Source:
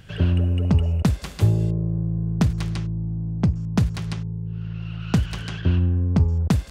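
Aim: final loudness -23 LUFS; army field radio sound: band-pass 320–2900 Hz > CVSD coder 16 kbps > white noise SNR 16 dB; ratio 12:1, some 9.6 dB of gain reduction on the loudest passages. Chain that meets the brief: compression 12:1, threshold -23 dBFS; band-pass 320–2900 Hz; CVSD coder 16 kbps; white noise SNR 16 dB; trim +18 dB

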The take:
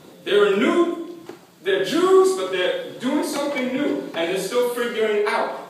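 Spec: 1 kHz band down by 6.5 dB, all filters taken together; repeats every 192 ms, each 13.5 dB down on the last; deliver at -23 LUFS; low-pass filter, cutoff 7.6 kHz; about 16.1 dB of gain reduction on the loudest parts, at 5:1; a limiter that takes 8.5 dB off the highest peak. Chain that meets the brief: low-pass 7.6 kHz; peaking EQ 1 kHz -8.5 dB; compression 5:1, threshold -30 dBFS; peak limiter -28.5 dBFS; feedback delay 192 ms, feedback 21%, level -13.5 dB; trim +13.5 dB

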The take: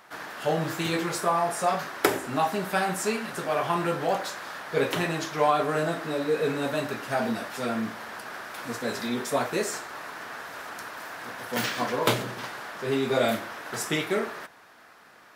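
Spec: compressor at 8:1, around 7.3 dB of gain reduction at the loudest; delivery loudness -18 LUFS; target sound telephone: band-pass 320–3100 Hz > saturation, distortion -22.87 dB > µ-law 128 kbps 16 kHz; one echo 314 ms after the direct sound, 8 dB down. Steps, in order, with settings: compression 8:1, threshold -27 dBFS; band-pass 320–3100 Hz; delay 314 ms -8 dB; saturation -21 dBFS; trim +16.5 dB; µ-law 128 kbps 16 kHz

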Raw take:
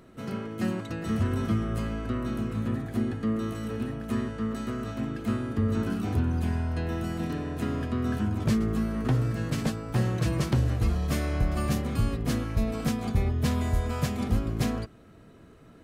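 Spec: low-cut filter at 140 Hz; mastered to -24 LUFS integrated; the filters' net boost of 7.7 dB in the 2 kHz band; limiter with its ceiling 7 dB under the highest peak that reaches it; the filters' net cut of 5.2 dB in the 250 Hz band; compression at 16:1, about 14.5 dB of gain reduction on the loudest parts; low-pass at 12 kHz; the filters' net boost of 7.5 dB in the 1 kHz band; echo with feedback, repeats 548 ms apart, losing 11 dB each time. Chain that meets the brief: high-pass 140 Hz; low-pass 12 kHz; peaking EQ 250 Hz -6 dB; peaking EQ 1 kHz +8 dB; peaking EQ 2 kHz +7 dB; compression 16:1, threshold -38 dBFS; peak limiter -33.5 dBFS; feedback delay 548 ms, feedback 28%, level -11 dB; trim +19 dB

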